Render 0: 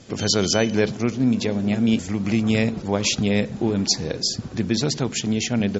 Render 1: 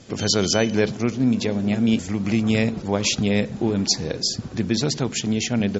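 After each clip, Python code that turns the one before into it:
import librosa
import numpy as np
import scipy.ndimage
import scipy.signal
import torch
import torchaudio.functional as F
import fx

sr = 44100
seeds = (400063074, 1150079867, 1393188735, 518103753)

y = x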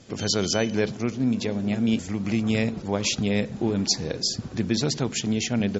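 y = fx.rider(x, sr, range_db=10, speed_s=2.0)
y = F.gain(torch.from_numpy(y), -3.5).numpy()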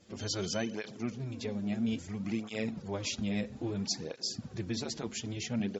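y = fx.flanger_cancel(x, sr, hz=0.6, depth_ms=7.9)
y = F.gain(torch.from_numpy(y), -7.5).numpy()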